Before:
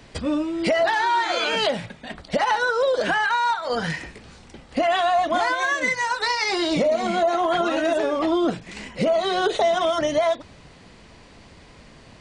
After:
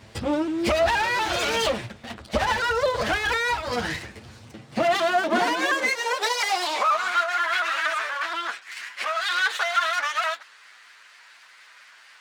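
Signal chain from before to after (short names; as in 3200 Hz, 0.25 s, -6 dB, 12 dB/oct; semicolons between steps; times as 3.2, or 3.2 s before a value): minimum comb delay 8.9 ms; high-pass sweep 65 Hz -> 1500 Hz, 4.03–7.28; shaped vibrato saw up 4.2 Hz, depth 100 cents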